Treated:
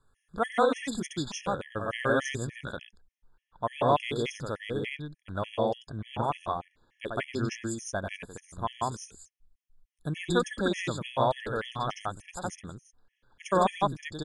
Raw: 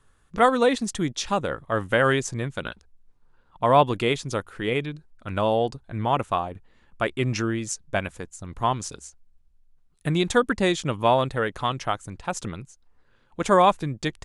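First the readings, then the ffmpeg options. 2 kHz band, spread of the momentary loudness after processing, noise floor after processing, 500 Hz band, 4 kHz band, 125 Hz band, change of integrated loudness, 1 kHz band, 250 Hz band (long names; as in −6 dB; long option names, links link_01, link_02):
−6.5 dB, 14 LU, −80 dBFS, −6.5 dB, −6.5 dB, −6.5 dB, −7.0 dB, −6.5 dB, −6.5 dB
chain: -af "aecho=1:1:93.29|160.3:0.501|1,afftfilt=real='re*gt(sin(2*PI*3.4*pts/sr)*(1-2*mod(floor(b*sr/1024/1700),2)),0)':imag='im*gt(sin(2*PI*3.4*pts/sr)*(1-2*mod(floor(b*sr/1024/1700),2)),0)':win_size=1024:overlap=0.75,volume=-7dB"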